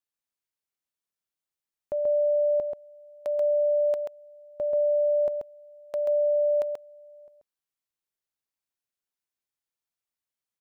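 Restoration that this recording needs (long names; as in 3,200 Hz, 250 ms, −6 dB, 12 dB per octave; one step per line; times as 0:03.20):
echo removal 134 ms −4 dB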